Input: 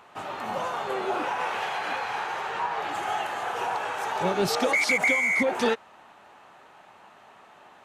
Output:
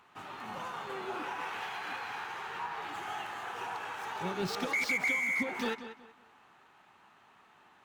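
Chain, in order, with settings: median filter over 5 samples; peaking EQ 590 Hz -9.5 dB 0.82 oct; filtered feedback delay 187 ms, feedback 28%, low-pass 4.4 kHz, level -11.5 dB; trim -7 dB

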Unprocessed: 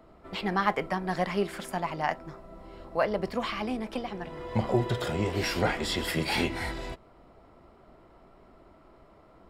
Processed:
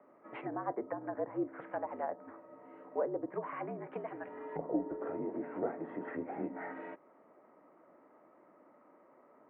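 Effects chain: low-pass that closes with the level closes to 670 Hz, closed at -25.5 dBFS; mistuned SSB -61 Hz 320–2200 Hz; trim -4.5 dB

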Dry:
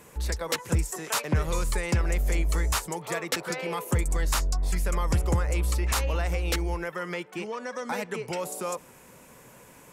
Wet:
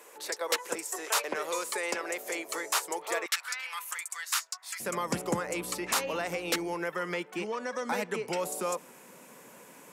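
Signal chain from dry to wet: high-pass 370 Hz 24 dB/octave, from 3.26 s 1.2 kHz, from 4.80 s 180 Hz

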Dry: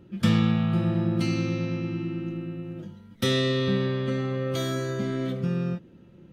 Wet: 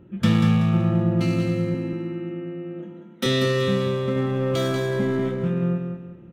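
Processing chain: local Wiener filter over 9 samples; 1.74–3.26 s: high-pass 200 Hz 24 dB/octave; 4.16–5.29 s: waveshaping leveller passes 1; feedback delay 189 ms, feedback 33%, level -6 dB; trim +2.5 dB

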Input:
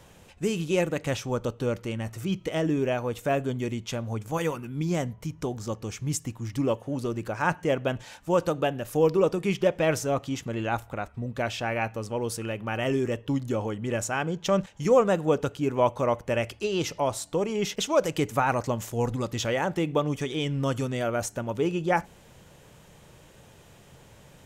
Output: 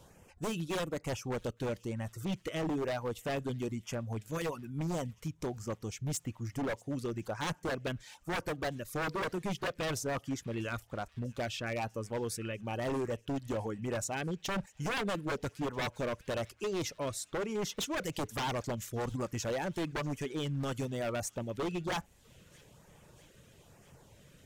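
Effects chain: reverb removal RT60 0.55 s; LFO notch sine 1.1 Hz 770–4000 Hz; wavefolder -24 dBFS; on a send: feedback echo behind a high-pass 644 ms, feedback 69%, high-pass 2 kHz, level -23.5 dB; on the sum: trim -4.5 dB

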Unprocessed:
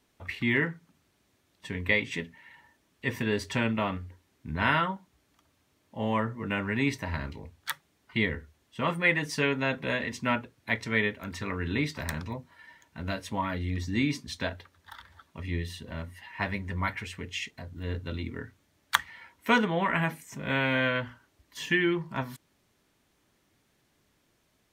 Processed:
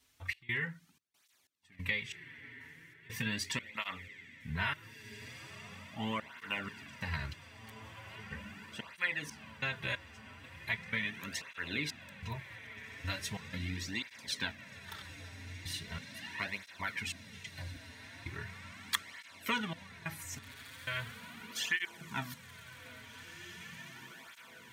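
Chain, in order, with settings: amplifier tone stack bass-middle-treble 5-5-5; compression 3:1, threshold -42 dBFS, peak gain reduction 12 dB; trance gate "xx.xxx.xx..xx..." 92 bpm -24 dB; echo that smears into a reverb 1940 ms, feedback 67%, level -12 dB; cancelling through-zero flanger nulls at 0.39 Hz, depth 6 ms; trim +13 dB

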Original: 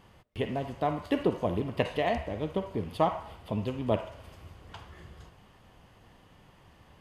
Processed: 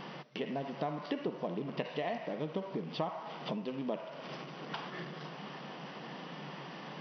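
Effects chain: companding laws mixed up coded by mu; compression 4:1, threshold -43 dBFS, peak gain reduction 19.5 dB; FFT band-pass 130–6000 Hz; trim +7 dB

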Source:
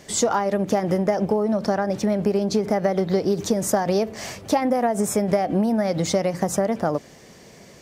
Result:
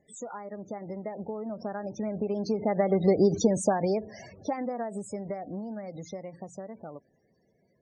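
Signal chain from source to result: Doppler pass-by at 3.26 s, 7 m/s, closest 2.6 m; loudest bins only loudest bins 32

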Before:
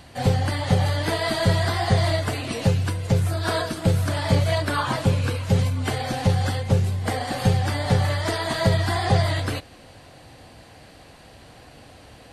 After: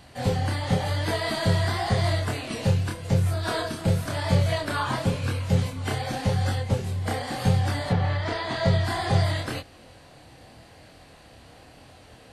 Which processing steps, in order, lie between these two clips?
7.89–8.83 s: low-pass 2.8 kHz -> 6.9 kHz 12 dB/octave; chorus 0.92 Hz, depth 7.7 ms

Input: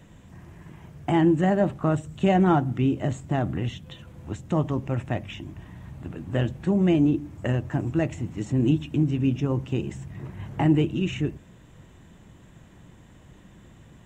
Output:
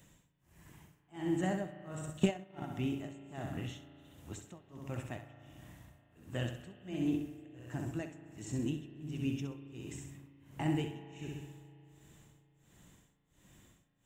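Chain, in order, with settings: pre-emphasis filter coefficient 0.8; on a send: flutter echo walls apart 11.2 m, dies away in 0.66 s; on the sum: tremolo 1.4 Hz, depth 99%; spring tank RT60 3.3 s, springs 36 ms, chirp 35 ms, DRR 11.5 dB; 2.03–2.66 s: transient shaper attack +11 dB, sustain -8 dB; trim +1 dB

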